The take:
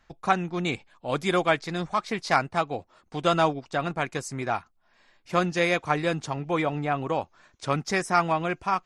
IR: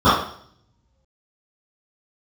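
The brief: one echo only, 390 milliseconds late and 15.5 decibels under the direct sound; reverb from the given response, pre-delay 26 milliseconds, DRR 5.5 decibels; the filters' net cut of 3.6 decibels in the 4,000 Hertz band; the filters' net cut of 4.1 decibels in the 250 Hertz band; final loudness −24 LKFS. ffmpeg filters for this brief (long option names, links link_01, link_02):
-filter_complex "[0:a]equalizer=frequency=250:width_type=o:gain=-7,equalizer=frequency=4000:width_type=o:gain=-4.5,aecho=1:1:390:0.168,asplit=2[link_01][link_02];[1:a]atrim=start_sample=2205,adelay=26[link_03];[link_02][link_03]afir=irnorm=-1:irlink=0,volume=-33dB[link_04];[link_01][link_04]amix=inputs=2:normalize=0,volume=2.5dB"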